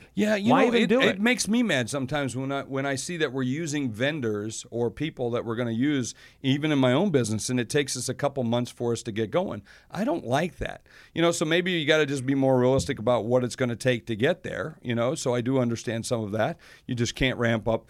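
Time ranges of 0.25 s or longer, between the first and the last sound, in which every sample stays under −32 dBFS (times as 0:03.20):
0:06.11–0:06.44
0:09.59–0:09.95
0:10.76–0:11.16
0:16.53–0:16.89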